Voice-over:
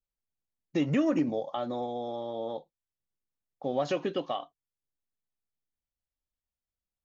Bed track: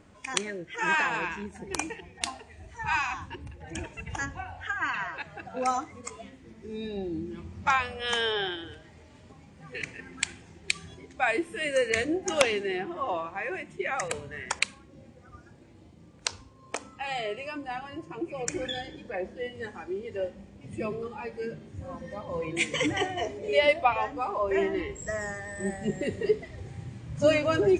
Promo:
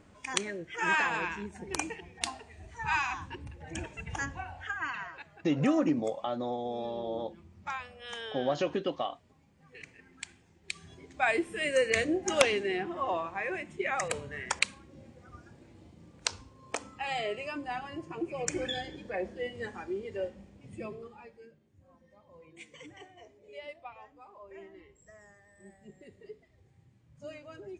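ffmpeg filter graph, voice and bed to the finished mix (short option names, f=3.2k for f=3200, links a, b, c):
-filter_complex "[0:a]adelay=4700,volume=-0.5dB[a];[1:a]volume=10dB,afade=t=out:st=4.42:d=0.97:silence=0.281838,afade=t=in:st=10.61:d=0.69:silence=0.251189,afade=t=out:st=19.82:d=1.7:silence=0.0841395[b];[a][b]amix=inputs=2:normalize=0"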